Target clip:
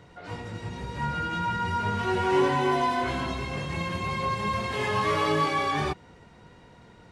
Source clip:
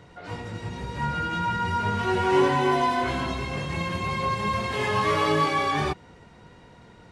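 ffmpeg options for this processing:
-af "acontrast=56,volume=0.398"

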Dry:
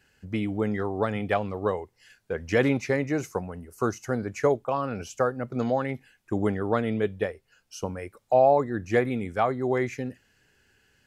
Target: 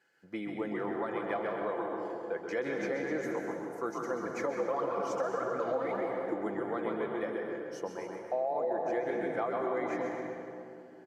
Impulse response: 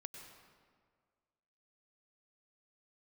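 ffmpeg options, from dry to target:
-filter_complex "[0:a]asettb=1/sr,asplit=3[s0][s1][s2];[s0]atrim=end=4.234[s3];[s1]atrim=start=4.23:end=6.34,asetpts=PTS-STARTPTS,afade=t=in:d=0.004:c=qsin,afade=t=out:st=2.106:d=0.004:c=qsin,aphaser=in_gain=1:out_gain=1:delay=4.3:decay=0.74:speed=1.6:type=triangular[s4];[s2]atrim=start=6.336[s5];[s3][s4]acrossfade=d=0.004:c1=hsin:c2=qsin[s6];[s6][s5]acrossfade=d=0.004:c1=qsin:c2=hsin,highshelf=f=3500:g=-11,bandreject=f=2700:w=5.2,asplit=7[s7][s8][s9][s10][s11][s12][s13];[s8]adelay=130,afreqshift=-74,volume=0.501[s14];[s9]adelay=260,afreqshift=-148,volume=0.234[s15];[s10]adelay=390,afreqshift=-222,volume=0.111[s16];[s11]adelay=520,afreqshift=-296,volume=0.0519[s17];[s12]adelay=650,afreqshift=-370,volume=0.0245[s18];[s13]adelay=780,afreqshift=-444,volume=0.0115[s19];[s7][s14][s15][s16][s17][s18][s19]amix=inputs=7:normalize=0,alimiter=limit=0.158:level=0:latency=1:release=147,highpass=370,aecho=1:1:5.9:0.37[s20];[1:a]atrim=start_sample=2205,asetrate=29106,aresample=44100[s21];[s20][s21]afir=irnorm=-1:irlink=0,acompressor=threshold=0.0398:ratio=6"

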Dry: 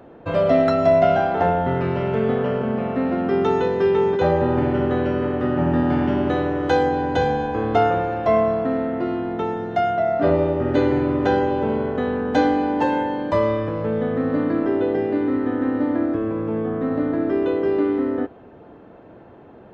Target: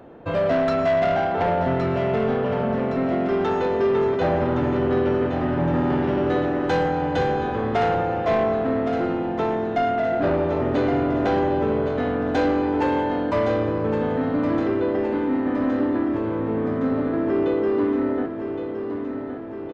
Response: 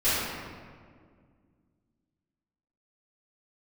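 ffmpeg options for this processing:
-af "asoftclip=type=tanh:threshold=0.158,aecho=1:1:1116|2232|3348|4464|5580|6696|7812|8928:0.376|0.226|0.135|0.0812|0.0487|0.0292|0.0175|0.0105"

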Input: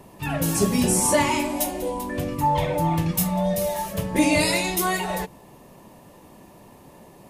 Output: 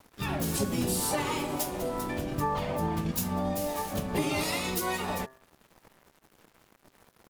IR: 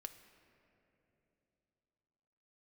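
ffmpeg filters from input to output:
-filter_complex "[0:a]aeval=exprs='sgn(val(0))*max(abs(val(0))-0.00708,0)':c=same,acompressor=threshold=0.0178:ratio=3,asplit=4[s0][s1][s2][s3];[s1]asetrate=22050,aresample=44100,atempo=2,volume=0.501[s4];[s2]asetrate=58866,aresample=44100,atempo=0.749154,volume=0.631[s5];[s3]asetrate=88200,aresample=44100,atempo=0.5,volume=0.158[s6];[s0][s4][s5][s6]amix=inputs=4:normalize=0,bandreject=f=130.7:t=h:w=4,bandreject=f=261.4:t=h:w=4,bandreject=f=392.1:t=h:w=4,bandreject=f=522.8:t=h:w=4,bandreject=f=653.5:t=h:w=4,bandreject=f=784.2:t=h:w=4,bandreject=f=914.9:t=h:w=4,bandreject=f=1045.6:t=h:w=4,bandreject=f=1176.3:t=h:w=4,bandreject=f=1307:t=h:w=4,bandreject=f=1437.7:t=h:w=4,bandreject=f=1568.4:t=h:w=4,bandreject=f=1699.1:t=h:w=4,bandreject=f=1829.8:t=h:w=4,bandreject=f=1960.5:t=h:w=4,bandreject=f=2091.2:t=h:w=4,volume=1.26"

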